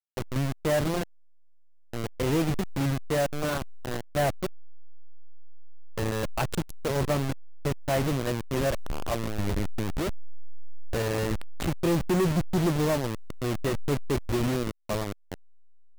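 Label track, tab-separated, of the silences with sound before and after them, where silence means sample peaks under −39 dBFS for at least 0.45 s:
1.030000	1.940000	silence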